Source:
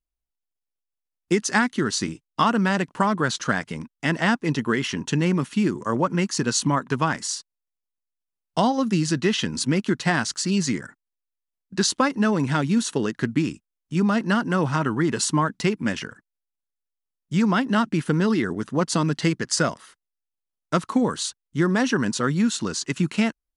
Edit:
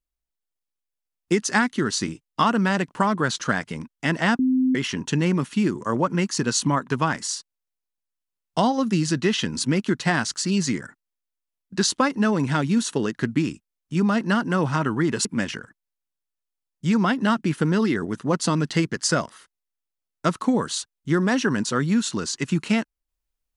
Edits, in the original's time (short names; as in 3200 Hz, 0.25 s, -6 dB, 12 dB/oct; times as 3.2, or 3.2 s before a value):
4.39–4.75 bleep 258 Hz -16.5 dBFS
15.25–15.73 cut